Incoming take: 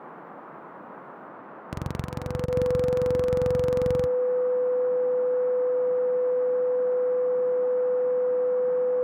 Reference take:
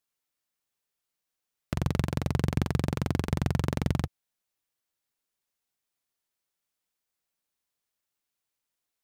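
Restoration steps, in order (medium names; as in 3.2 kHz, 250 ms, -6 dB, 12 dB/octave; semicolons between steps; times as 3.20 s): band-stop 500 Hz, Q 30; interpolate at 2.46 s, 20 ms; noise print and reduce 30 dB; trim 0 dB, from 1.29 s +4 dB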